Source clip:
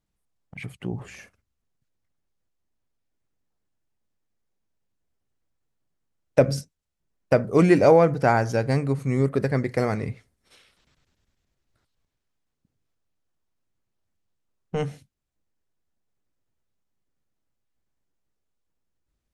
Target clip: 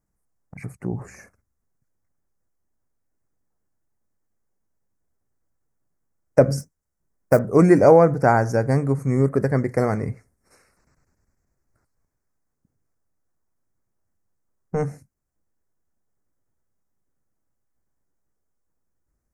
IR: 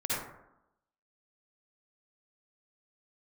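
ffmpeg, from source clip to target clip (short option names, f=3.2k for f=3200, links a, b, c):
-filter_complex "[0:a]asettb=1/sr,asplit=3[a][b][c];[a]atrim=end=6.594[d];[b]atrim=start=6.59:end=7.39,asetpts=PTS-STARTPTS,afade=t=in:d=0.004:c=qsin,afade=t=out:st=0.796:d=0.004:c=qsin,acrusher=bits=5:mode=log:mix=0:aa=0.000001[e];[c]atrim=start=7.386[f];[d][e]acrossfade=d=0.004:c1=hsin:c2=qsin[g];[g][f]acrossfade=d=0.004:c1=qsin:c2=hsin,asuperstop=centerf=3300:order=4:qfactor=0.85,volume=3dB"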